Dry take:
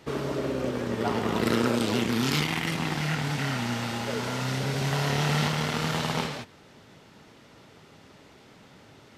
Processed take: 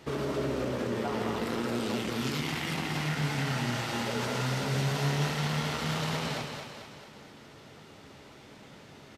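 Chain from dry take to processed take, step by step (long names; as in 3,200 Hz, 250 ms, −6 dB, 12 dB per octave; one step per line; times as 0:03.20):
brickwall limiter −24 dBFS, peak gain reduction 11.5 dB
double-tracking delay 14 ms −12 dB
on a send: echo with a time of its own for lows and highs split 370 Hz, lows 132 ms, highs 221 ms, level −5.5 dB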